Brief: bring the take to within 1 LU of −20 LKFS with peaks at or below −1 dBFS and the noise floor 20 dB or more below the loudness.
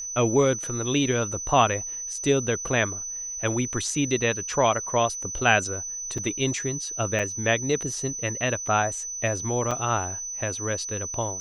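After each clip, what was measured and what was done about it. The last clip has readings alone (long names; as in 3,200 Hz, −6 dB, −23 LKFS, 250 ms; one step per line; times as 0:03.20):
number of dropouts 3; longest dropout 4.4 ms; interfering tone 6,000 Hz; level of the tone −31 dBFS; integrated loudness −25.0 LKFS; sample peak −4.0 dBFS; target loudness −20.0 LKFS
→ repair the gap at 0:06.18/0:07.19/0:09.71, 4.4 ms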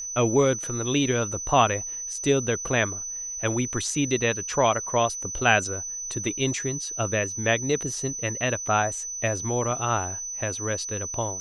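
number of dropouts 0; interfering tone 6,000 Hz; level of the tone −31 dBFS
→ notch filter 6,000 Hz, Q 30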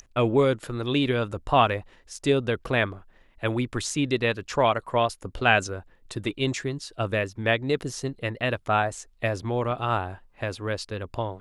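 interfering tone none found; integrated loudness −26.0 LKFS; sample peak −4.5 dBFS; target loudness −20.0 LKFS
→ level +6 dB
brickwall limiter −1 dBFS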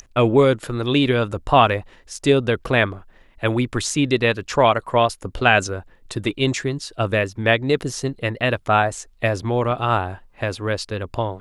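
integrated loudness −20.5 LKFS; sample peak −1.0 dBFS; background noise floor −52 dBFS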